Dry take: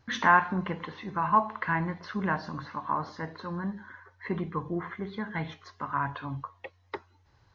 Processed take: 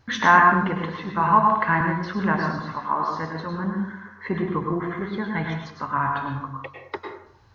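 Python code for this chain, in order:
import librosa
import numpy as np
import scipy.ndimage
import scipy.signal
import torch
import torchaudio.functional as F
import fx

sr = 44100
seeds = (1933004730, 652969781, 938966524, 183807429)

y = fx.highpass(x, sr, hz=210.0, slope=12, at=(2.6, 3.11))
y = fx.rev_plate(y, sr, seeds[0], rt60_s=0.68, hf_ratio=0.5, predelay_ms=90, drr_db=2.0)
y = fx.band_squash(y, sr, depth_pct=40, at=(1.2, 1.81))
y = y * librosa.db_to_amplitude(5.0)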